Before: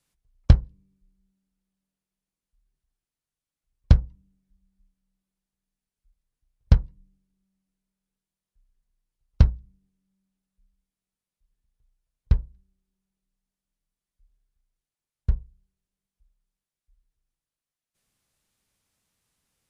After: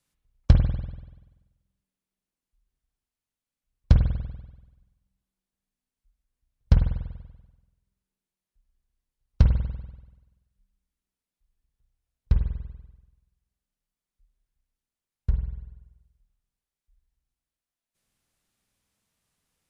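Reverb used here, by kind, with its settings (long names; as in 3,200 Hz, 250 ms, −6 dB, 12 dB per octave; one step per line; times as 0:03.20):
spring reverb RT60 1.1 s, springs 48 ms, chirp 35 ms, DRR 4 dB
level −2 dB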